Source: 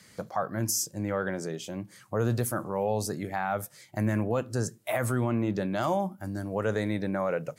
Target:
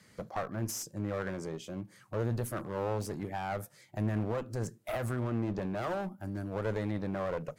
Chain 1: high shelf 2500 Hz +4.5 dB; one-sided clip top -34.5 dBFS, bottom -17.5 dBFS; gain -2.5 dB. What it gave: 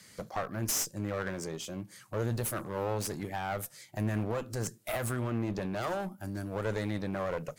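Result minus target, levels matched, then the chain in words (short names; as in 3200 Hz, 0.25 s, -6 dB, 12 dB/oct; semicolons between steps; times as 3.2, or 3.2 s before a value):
4000 Hz band +5.5 dB
high shelf 2500 Hz -7 dB; one-sided clip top -34.5 dBFS, bottom -17.5 dBFS; gain -2.5 dB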